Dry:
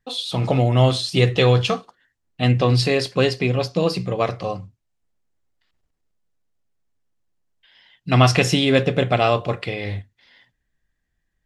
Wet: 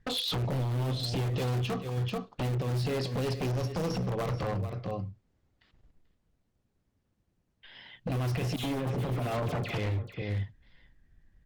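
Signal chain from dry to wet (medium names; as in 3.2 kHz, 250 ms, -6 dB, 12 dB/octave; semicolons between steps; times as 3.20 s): 3.46–4.03 s: sorted samples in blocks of 8 samples; distance through air 88 m; in parallel at -8 dB: integer overflow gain 14 dB; on the sum: peak limiter -15 dBFS, peak gain reduction 11.5 dB; bass shelf 390 Hz +9.5 dB; 8.56–9.78 s: phase dispersion lows, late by 75 ms, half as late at 1.9 kHz; on a send: delay 437 ms -15 dB; on the sum: compression 8:1, threshold -28 dBFS, peak gain reduction 17 dB; wavefolder -27.5 dBFS; trim +2 dB; Opus 48 kbps 48 kHz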